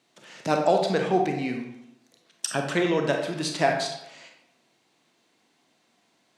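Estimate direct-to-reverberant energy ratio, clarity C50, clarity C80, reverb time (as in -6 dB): 2.5 dB, 5.0 dB, 7.5 dB, 0.85 s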